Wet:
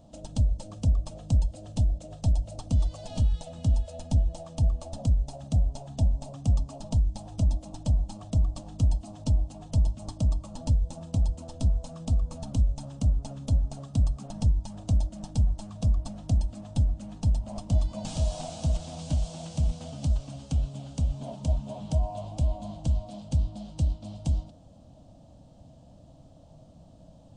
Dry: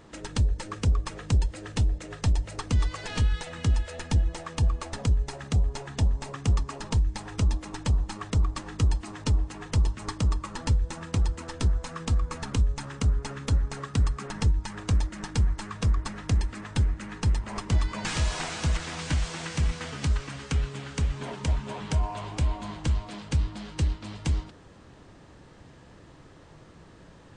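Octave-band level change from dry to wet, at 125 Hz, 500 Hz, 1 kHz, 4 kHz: 0.0, -1.5, -7.0, -8.5 dB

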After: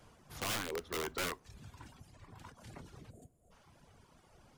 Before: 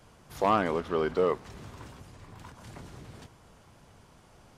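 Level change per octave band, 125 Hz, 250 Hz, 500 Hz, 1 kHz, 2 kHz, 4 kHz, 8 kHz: -8.5, -13.0, -15.0, -14.5, -3.0, +2.5, +8.5 dB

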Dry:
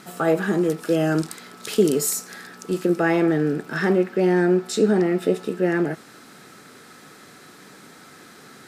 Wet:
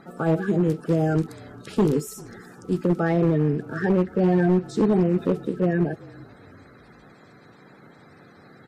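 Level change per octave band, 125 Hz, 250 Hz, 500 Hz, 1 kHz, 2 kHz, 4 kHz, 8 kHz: +4.5 dB, -0.5 dB, -3.5 dB, -2.0 dB, -6.5 dB, under -10 dB, under -10 dB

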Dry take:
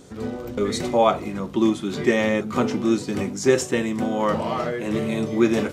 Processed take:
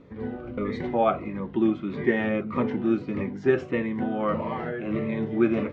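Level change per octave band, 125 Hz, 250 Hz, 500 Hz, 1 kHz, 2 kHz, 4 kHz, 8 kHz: -3.0 dB, -3.0 dB, -4.5 dB, -5.0 dB, -4.0 dB, -14.0 dB, under -30 dB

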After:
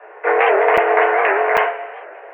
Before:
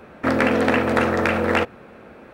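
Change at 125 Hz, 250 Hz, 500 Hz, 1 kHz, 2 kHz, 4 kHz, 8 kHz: under -20 dB, -12.5 dB, +6.0 dB, +8.5 dB, +5.5 dB, -1.5 dB, n/a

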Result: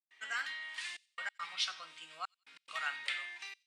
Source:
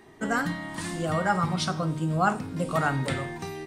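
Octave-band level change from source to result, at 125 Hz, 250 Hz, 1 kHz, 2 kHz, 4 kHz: under -40 dB, under -40 dB, -17.5 dB, -7.0 dB, -1.5 dB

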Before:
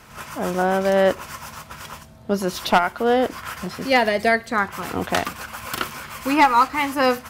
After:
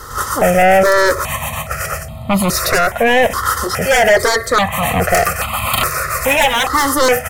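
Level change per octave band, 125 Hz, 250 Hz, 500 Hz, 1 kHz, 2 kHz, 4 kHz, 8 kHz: +10.5, +3.5, +7.5, +5.5, +9.0, +9.5, +16.0 dB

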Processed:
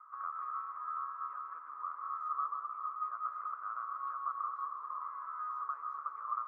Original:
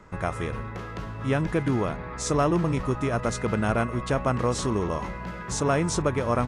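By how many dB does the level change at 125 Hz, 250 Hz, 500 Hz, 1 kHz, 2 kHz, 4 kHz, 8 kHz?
under -40 dB, under -40 dB, under -40 dB, -5.0 dB, -21.0 dB, under -40 dB, under -40 dB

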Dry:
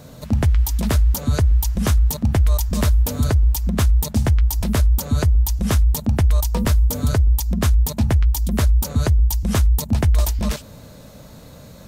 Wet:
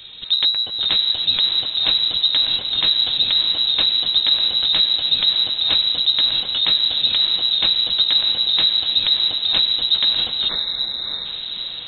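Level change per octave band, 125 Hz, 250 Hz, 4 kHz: under -25 dB, -17.5 dB, +23.0 dB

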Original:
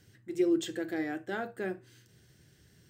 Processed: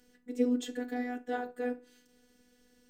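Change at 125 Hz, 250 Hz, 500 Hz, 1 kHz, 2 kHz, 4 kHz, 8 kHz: under -10 dB, -1.0 dB, -2.0 dB, +2.5 dB, -3.5 dB, -3.5 dB, -3.5 dB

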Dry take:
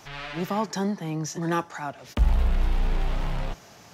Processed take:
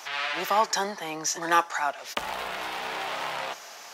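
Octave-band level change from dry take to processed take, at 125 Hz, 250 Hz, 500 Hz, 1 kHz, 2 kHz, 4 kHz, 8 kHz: -21.5 dB, -10.0 dB, +1.0 dB, +6.5 dB, +8.0 dB, +8.0 dB, n/a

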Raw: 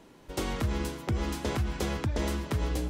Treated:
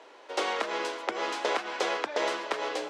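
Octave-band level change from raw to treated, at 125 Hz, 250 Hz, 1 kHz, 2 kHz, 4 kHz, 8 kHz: under -30 dB, -8.0 dB, +8.0 dB, +7.5 dB, +5.5 dB, -0.5 dB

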